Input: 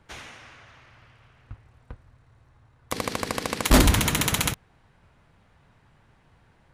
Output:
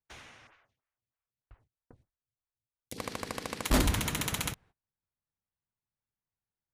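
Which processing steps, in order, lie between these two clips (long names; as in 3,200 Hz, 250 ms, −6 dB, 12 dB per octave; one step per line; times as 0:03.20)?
noise gate −48 dBFS, range −30 dB
0:00.47–0:02.98: phaser with staggered stages 3.2 Hz
level −9 dB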